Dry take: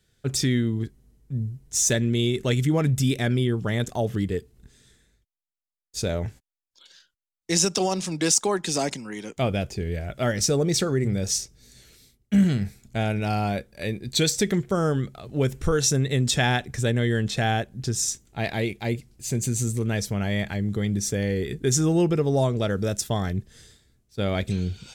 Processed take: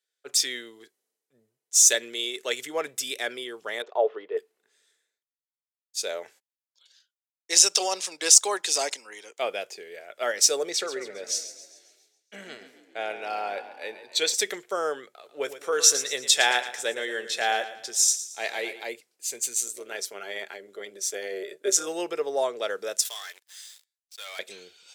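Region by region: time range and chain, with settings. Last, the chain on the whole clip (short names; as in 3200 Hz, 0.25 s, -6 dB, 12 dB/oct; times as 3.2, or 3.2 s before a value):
3.82–4.37 speaker cabinet 380–3200 Hz, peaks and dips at 420 Hz +9 dB, 620 Hz +5 dB, 960 Hz +6 dB, 1500 Hz +4 dB, 2100 Hz -7 dB, 3000 Hz -4 dB + notch 1600 Hz, Q 5.1
10.69–14.34 LPF 3600 Hz 6 dB/oct + frequency-shifting echo 0.136 s, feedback 61%, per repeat +32 Hz, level -11.5 dB
15.08–18.83 doubler 14 ms -13.5 dB + feedback echo 0.113 s, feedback 48%, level -11.5 dB
19.66–21.87 small resonant body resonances 390/1400 Hz, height 10 dB, ringing for 90 ms + AM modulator 190 Hz, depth 35%
23.05–24.39 HPF 1400 Hz + sample leveller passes 5 + compressor 2:1, threshold -44 dBFS
whole clip: Chebyshev high-pass 450 Hz, order 3; tilt shelf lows -3.5 dB, about 910 Hz; three-band expander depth 40%; gain -1 dB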